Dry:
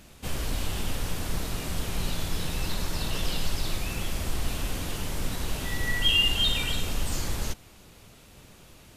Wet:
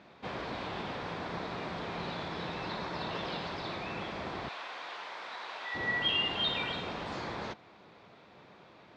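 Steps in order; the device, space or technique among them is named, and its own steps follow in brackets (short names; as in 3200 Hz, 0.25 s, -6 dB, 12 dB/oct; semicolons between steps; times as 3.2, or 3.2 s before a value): 4.48–5.75 HPF 850 Hz 12 dB/oct; kitchen radio (speaker cabinet 210–3600 Hz, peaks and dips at 260 Hz -4 dB, 720 Hz +3 dB, 1000 Hz +4 dB, 2900 Hz -9 dB)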